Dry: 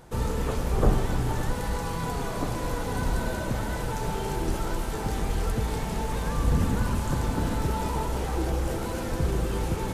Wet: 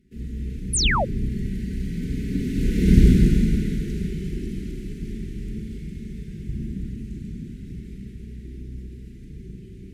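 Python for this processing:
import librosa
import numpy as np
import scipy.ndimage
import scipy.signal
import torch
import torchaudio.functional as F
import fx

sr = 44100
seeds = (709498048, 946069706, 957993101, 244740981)

p1 = fx.lower_of_two(x, sr, delay_ms=4.8)
p2 = fx.doppler_pass(p1, sr, speed_mps=11, closest_m=2.3, pass_at_s=2.95)
p3 = scipy.signal.sosfilt(scipy.signal.cheby1(3, 1.0, [350.0, 2000.0], 'bandstop', fs=sr, output='sos'), p2)
p4 = fx.high_shelf(p3, sr, hz=5200.0, db=-9.5)
p5 = fx.rider(p4, sr, range_db=4, speed_s=2.0)
p6 = p4 + (p5 * librosa.db_to_amplitude(1.0))
p7 = scipy.signal.sosfilt(scipy.signal.butter(2, 41.0, 'highpass', fs=sr, output='sos'), p6)
p8 = fx.low_shelf(p7, sr, hz=500.0, db=12.0)
p9 = fx.rev_schroeder(p8, sr, rt60_s=2.4, comb_ms=32, drr_db=-0.5)
y = fx.spec_paint(p9, sr, seeds[0], shape='fall', start_s=0.73, length_s=0.32, low_hz=480.0, high_hz=11000.0, level_db=-22.0)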